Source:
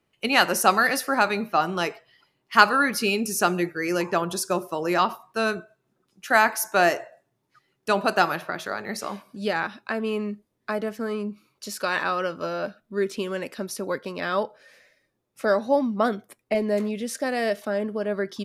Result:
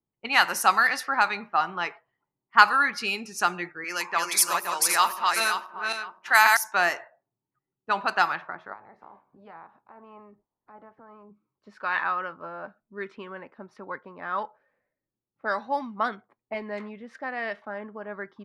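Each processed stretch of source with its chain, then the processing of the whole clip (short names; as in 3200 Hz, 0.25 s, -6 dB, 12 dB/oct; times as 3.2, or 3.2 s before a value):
3.84–6.57 regenerating reverse delay 0.261 s, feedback 52%, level -2.5 dB + RIAA curve recording
8.72–11.3 spectral limiter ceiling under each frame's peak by 14 dB + bell 880 Hz +6.5 dB 1.4 oct + compressor 2:1, threshold -42 dBFS
whole clip: resonant high shelf 2300 Hz +8 dB, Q 1.5; low-pass opened by the level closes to 360 Hz, open at -14.5 dBFS; band shelf 1300 Hz +14 dB; gain -12 dB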